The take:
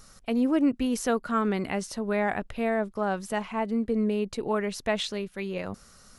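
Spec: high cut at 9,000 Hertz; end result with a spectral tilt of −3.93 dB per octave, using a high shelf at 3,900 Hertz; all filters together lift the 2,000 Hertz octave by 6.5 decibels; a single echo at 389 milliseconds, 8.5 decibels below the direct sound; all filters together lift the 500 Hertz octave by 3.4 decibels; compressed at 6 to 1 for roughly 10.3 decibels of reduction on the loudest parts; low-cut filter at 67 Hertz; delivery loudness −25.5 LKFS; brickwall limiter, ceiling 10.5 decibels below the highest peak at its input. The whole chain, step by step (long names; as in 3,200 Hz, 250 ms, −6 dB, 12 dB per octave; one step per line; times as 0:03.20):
high-pass filter 67 Hz
low-pass filter 9,000 Hz
parametric band 500 Hz +4 dB
parametric band 2,000 Hz +8.5 dB
high-shelf EQ 3,900 Hz −4 dB
downward compressor 6 to 1, threshold −29 dBFS
brickwall limiter −28 dBFS
single-tap delay 389 ms −8.5 dB
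level +11 dB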